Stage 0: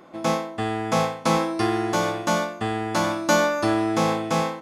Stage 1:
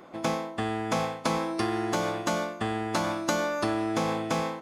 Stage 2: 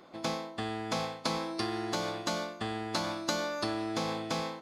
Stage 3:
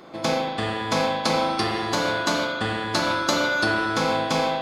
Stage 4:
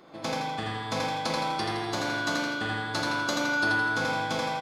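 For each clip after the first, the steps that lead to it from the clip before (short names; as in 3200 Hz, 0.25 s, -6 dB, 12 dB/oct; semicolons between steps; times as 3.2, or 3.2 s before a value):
harmonic-percussive split harmonic -7 dB; compressor 4:1, threshold -27 dBFS, peak gain reduction 6.5 dB; gain +3 dB
bell 4300 Hz +10 dB 0.67 oct; gain -6 dB
spring tank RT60 2 s, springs 38 ms, chirp 45 ms, DRR -2 dB; gain +8.5 dB
feedback echo 83 ms, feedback 52%, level -3 dB; gain -8 dB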